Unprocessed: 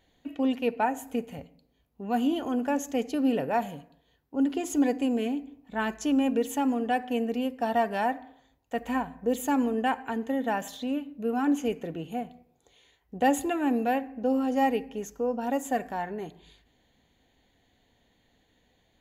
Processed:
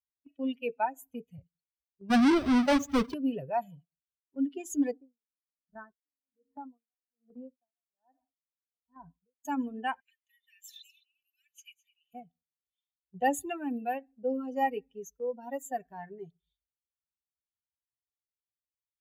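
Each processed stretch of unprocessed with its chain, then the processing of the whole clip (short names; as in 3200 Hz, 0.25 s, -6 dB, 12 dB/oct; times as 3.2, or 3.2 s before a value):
2.1–3.14 half-waves squared off + LPF 2400 Hz 6 dB/oct + sample leveller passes 2
4.91–9.45 LPF 1600 Hz 24 dB/oct + compressor 2:1, threshold -28 dBFS + dB-linear tremolo 1.2 Hz, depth 35 dB
10–12.14 steep high-pass 2000 Hz 48 dB/oct + echo 0.211 s -7 dB
whole clip: per-bin expansion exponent 2; gate -55 dBFS, range -6 dB; notch 450 Hz, Q 12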